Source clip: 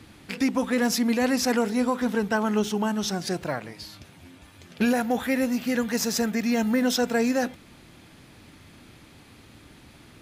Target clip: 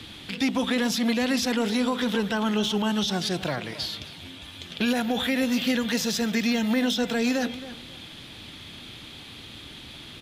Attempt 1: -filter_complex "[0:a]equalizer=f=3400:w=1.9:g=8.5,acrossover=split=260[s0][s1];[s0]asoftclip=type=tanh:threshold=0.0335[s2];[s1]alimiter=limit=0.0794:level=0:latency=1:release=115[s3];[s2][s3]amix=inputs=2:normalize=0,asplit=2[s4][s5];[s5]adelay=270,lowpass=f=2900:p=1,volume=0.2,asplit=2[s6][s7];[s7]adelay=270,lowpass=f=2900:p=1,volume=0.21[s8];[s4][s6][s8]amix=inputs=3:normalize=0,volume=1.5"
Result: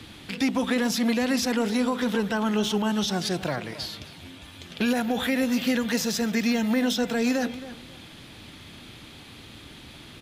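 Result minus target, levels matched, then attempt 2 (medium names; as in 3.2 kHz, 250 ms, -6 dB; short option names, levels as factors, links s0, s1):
4 kHz band -3.0 dB
-filter_complex "[0:a]equalizer=f=3400:w=1.9:g=15,acrossover=split=260[s0][s1];[s0]asoftclip=type=tanh:threshold=0.0335[s2];[s1]alimiter=limit=0.0794:level=0:latency=1:release=115[s3];[s2][s3]amix=inputs=2:normalize=0,asplit=2[s4][s5];[s5]adelay=270,lowpass=f=2900:p=1,volume=0.2,asplit=2[s6][s7];[s7]adelay=270,lowpass=f=2900:p=1,volume=0.21[s8];[s4][s6][s8]amix=inputs=3:normalize=0,volume=1.5"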